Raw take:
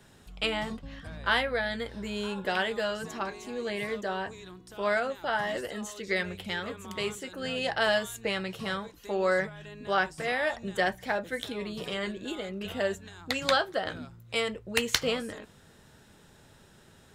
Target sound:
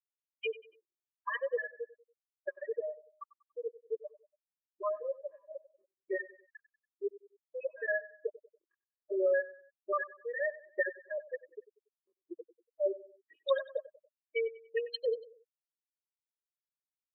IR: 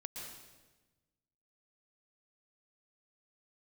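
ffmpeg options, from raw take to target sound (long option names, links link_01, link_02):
-af "highpass=frequency=150:width=0.5412,highpass=frequency=150:width=1.3066,afftfilt=real='re*gte(hypot(re,im),0.224)':imag='im*gte(hypot(re,im),0.224)':win_size=1024:overlap=0.75,aecho=1:1:95|190|285:0.133|0.052|0.0203,afftfilt=real='re*eq(mod(floor(b*sr/1024/320),2),1)':imag='im*eq(mod(floor(b*sr/1024/320),2),1)':win_size=1024:overlap=0.75"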